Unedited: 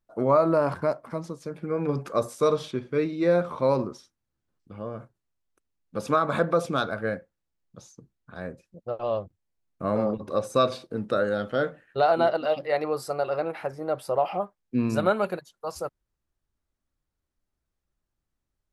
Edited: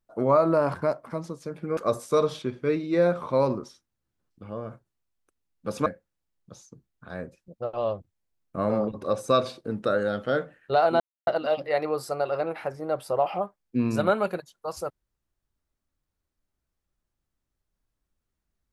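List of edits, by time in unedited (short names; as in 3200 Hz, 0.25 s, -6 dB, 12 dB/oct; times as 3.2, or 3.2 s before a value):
1.77–2.06 cut
6.15–7.12 cut
12.26 insert silence 0.27 s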